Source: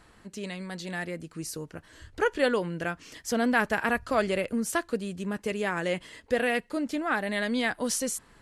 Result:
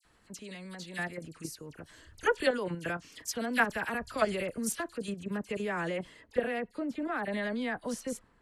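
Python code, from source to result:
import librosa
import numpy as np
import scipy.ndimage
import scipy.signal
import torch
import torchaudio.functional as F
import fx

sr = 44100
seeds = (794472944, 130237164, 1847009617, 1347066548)

y = fx.high_shelf(x, sr, hz=2800.0, db=fx.steps((0.0, 3.0), (5.14, -5.0), (6.22, -10.5)))
y = fx.level_steps(y, sr, step_db=11)
y = fx.dispersion(y, sr, late='lows', ms=51.0, hz=2200.0)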